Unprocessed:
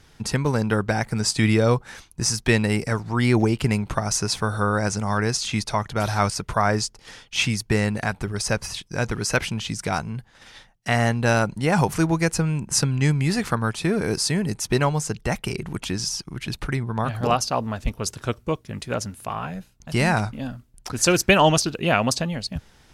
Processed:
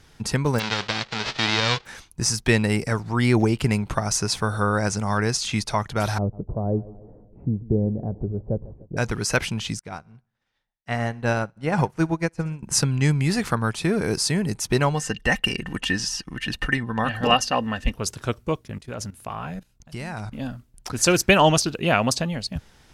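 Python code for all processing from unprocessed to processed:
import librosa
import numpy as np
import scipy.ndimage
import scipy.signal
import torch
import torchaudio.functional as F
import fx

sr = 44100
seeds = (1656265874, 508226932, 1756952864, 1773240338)

y = fx.envelope_flatten(x, sr, power=0.1, at=(0.58, 1.85), fade=0.02)
y = fx.cheby2_lowpass(y, sr, hz=12000.0, order=4, stop_db=60, at=(0.58, 1.85), fade=0.02)
y = fx.chain(y, sr, fx.law_mismatch(coded='mu'),
    fx.cheby2_lowpass(hz=3200.0, order=4, stop_db=80),
    fx.echo_feedback(ms=147, feedback_pct=54, wet_db=-19.0), at=(6.18, 8.97))
y = fx.chain(y, sr, fx.high_shelf(hz=4600.0, db=-10.0),
    fx.echo_feedback(ms=63, feedback_pct=58, wet_db=-18),
    fx.upward_expand(threshold_db=-36.0, expansion=2.5), at=(9.79, 12.63))
y = fx.chain(y, sr, fx.high_shelf(hz=10000.0, db=-7.0),
    fx.comb(ms=3.9, depth=0.43),
    fx.small_body(hz=(1800.0, 2800.0), ring_ms=25, db=16), at=(14.94, 17.96))
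y = fx.chain(y, sr, fx.low_shelf(hz=84.0, db=4.5),
    fx.level_steps(step_db=16), at=(18.68, 20.32))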